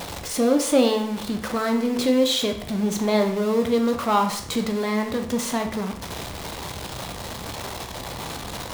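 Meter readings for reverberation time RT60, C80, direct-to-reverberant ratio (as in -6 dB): 0.65 s, 12.0 dB, 4.5 dB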